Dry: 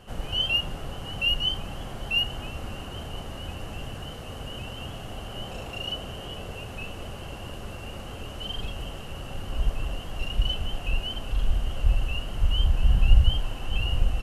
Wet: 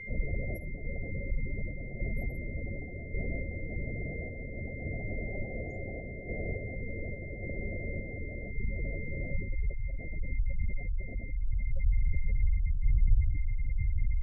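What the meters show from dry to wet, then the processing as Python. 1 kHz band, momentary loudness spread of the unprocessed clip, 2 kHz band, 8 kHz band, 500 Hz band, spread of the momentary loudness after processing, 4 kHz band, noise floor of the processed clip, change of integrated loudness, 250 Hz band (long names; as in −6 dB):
−18.0 dB, 15 LU, −5.5 dB, can't be measured, −2.5 dB, 8 LU, below −40 dB, −41 dBFS, −6.5 dB, −2.0 dB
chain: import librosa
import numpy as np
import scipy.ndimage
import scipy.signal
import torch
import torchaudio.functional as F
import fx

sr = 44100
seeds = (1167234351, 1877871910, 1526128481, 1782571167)

p1 = scipy.signal.sosfilt(scipy.signal.cheby2(4, 50, [1200.0, 3500.0], 'bandstop', fs=sr, output='sos'), x)
p2 = fx.hum_notches(p1, sr, base_hz=60, count=4)
p3 = fx.echo_feedback(p2, sr, ms=761, feedback_pct=25, wet_db=-10.0)
p4 = fx.over_compress(p3, sr, threshold_db=-27.0, ratio=-1.0)
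p5 = p3 + F.gain(torch.from_numpy(p4), 1.0).numpy()
p6 = p5 + 10.0 ** (-34.0 / 20.0) * np.sin(2.0 * np.pi * 2100.0 * np.arange(len(p5)) / sr)
p7 = np.clip(10.0 ** (10.0 / 20.0) * p6, -1.0, 1.0) / 10.0 ** (10.0 / 20.0)
p8 = fx.tremolo_random(p7, sr, seeds[0], hz=3.5, depth_pct=55)
p9 = p8 + fx.echo_wet_highpass(p8, sr, ms=86, feedback_pct=63, hz=1700.0, wet_db=-4.0, dry=0)
p10 = fx.spec_gate(p9, sr, threshold_db=-20, keep='strong')
y = F.gain(torch.from_numpy(p10), -5.5).numpy()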